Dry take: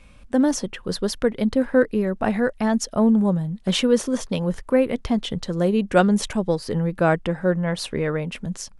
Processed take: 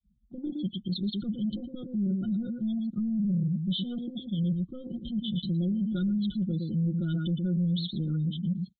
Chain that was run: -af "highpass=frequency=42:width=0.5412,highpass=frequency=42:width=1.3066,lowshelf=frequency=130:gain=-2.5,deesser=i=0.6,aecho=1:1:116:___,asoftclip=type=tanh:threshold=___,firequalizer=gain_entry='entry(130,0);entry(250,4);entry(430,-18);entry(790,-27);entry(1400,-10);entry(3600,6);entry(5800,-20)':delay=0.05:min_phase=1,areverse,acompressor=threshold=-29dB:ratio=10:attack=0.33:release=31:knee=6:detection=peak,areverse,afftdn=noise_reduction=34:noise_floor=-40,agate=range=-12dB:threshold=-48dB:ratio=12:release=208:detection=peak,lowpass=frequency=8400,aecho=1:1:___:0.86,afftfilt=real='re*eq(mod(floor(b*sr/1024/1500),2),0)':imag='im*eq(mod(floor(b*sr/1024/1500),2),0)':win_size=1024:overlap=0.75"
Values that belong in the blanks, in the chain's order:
0.335, -17dB, 5.7